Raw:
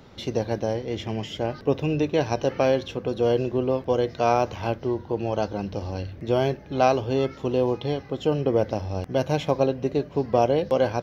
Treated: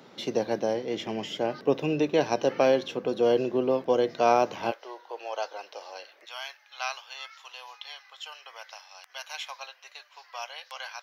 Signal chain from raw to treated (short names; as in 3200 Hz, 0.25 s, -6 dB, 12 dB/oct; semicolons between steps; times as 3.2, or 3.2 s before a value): Bessel high-pass 230 Hz, order 6, from 4.7 s 860 Hz, from 6.24 s 1600 Hz